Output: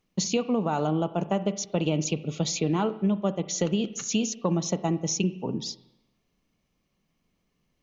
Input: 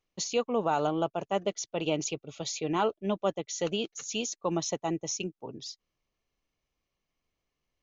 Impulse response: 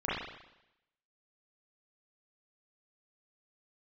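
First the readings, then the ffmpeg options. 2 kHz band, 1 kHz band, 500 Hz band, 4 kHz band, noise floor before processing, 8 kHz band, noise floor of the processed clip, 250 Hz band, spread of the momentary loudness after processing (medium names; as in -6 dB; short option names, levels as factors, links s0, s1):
+1.0 dB, -0.5 dB, +1.5 dB, +2.5 dB, under -85 dBFS, no reading, -75 dBFS, +8.0 dB, 4 LU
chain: -filter_complex "[0:a]equalizer=f=190:t=o:w=1.1:g=13,acompressor=threshold=0.0398:ratio=6,asplit=2[s0][s1];[1:a]atrim=start_sample=2205[s2];[s1][s2]afir=irnorm=-1:irlink=0,volume=0.0944[s3];[s0][s3]amix=inputs=2:normalize=0,volume=1.88"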